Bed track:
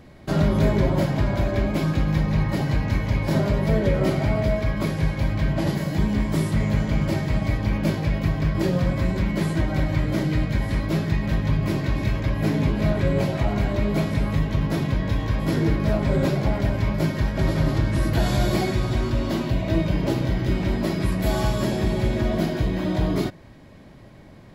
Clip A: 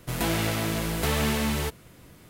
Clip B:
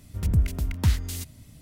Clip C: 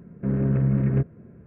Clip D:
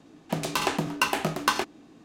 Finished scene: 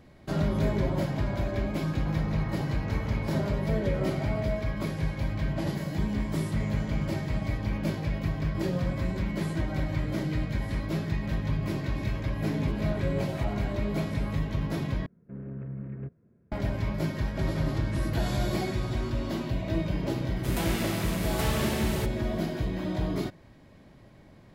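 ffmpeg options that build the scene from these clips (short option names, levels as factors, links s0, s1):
-filter_complex "[1:a]asplit=2[s0][s1];[0:a]volume=0.447[s2];[s0]lowpass=f=1400:w=0.5412,lowpass=f=1400:w=1.3066[s3];[2:a]acompressor=threshold=0.0141:ratio=6:attack=3.2:release=140:knee=1:detection=peak[s4];[s2]asplit=2[s5][s6];[s5]atrim=end=15.064[s7];[3:a]atrim=end=1.46,asetpts=PTS-STARTPTS,volume=0.158[s8];[s6]atrim=start=16.516[s9];[s3]atrim=end=2.29,asetpts=PTS-STARTPTS,volume=0.237,afade=t=in:d=0.004:c=hsin,afade=t=out:st=2.286:d=0.004:c=hsin,adelay=1850[s10];[s4]atrim=end=1.61,asetpts=PTS-STARTPTS,volume=0.178,afade=t=in:d=0.004:c=hsin,afade=t=out:st=1.606:d=0.004:c=hsin,adelay=538020S[s11];[s1]atrim=end=2.29,asetpts=PTS-STARTPTS,volume=0.562,afade=t=in:d=0.004:c=hsin,afade=t=out:st=2.286:d=0.004:c=hsin,adelay=897876S[s12];[s7][s8]acrossfade=d=0.004:c1=hsin:c2=hsin[s13];[s13][s9]acrossfade=d=0.004:c1=hsin:c2=hsin[s14];[s14][s10][s11][s12]amix=inputs=4:normalize=0"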